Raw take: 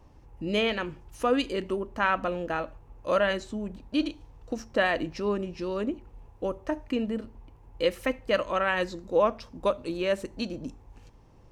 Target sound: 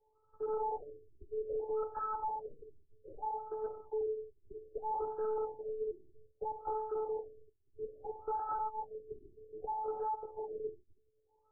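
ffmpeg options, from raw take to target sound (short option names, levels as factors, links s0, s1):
-filter_complex "[0:a]bandreject=f=60.69:t=h:w=4,bandreject=f=121.38:t=h:w=4,bandreject=f=182.07:t=h:w=4,bandreject=f=242.76:t=h:w=4,bandreject=f=303.45:t=h:w=4,bandreject=f=364.14:t=h:w=4,bandreject=f=424.83:t=h:w=4,bandreject=f=485.52:t=h:w=4,bandreject=f=546.21:t=h:w=4,bandreject=f=606.9:t=h:w=4,bandreject=f=667.59:t=h:w=4,bandreject=f=728.28:t=h:w=4,bandreject=f=788.97:t=h:w=4,bandreject=f=849.66:t=h:w=4,bandreject=f=910.35:t=h:w=4,agate=range=0.224:threshold=0.00447:ratio=16:detection=peak,highpass=42,acrossover=split=400 2300:gain=0.224 1 0.141[s0][s1][s2];[s0][s1][s2]amix=inputs=3:normalize=0,aecho=1:1:7.1:0.92,adynamicequalizer=threshold=0.0126:dfrequency=590:dqfactor=4.9:tfrequency=590:tqfactor=4.9:attack=5:release=100:ratio=0.375:range=3.5:mode=boostabove:tftype=bell,acrossover=split=150|3000[s3][s4][s5];[s4]acompressor=threshold=0.0398:ratio=6[s6];[s3][s6][s5]amix=inputs=3:normalize=0,afftfilt=real='hypot(re,im)*cos(PI*b)':imag='0':win_size=512:overlap=0.75,asoftclip=type=hard:threshold=0.0106,asetrate=55563,aresample=44100,atempo=0.793701,afftfilt=real='re*lt(b*sr/1024,400*pow(1700/400,0.5+0.5*sin(2*PI*0.62*pts/sr)))':imag='im*lt(b*sr/1024,400*pow(1700/400,0.5+0.5*sin(2*PI*0.62*pts/sr)))':win_size=1024:overlap=0.75,volume=2.24"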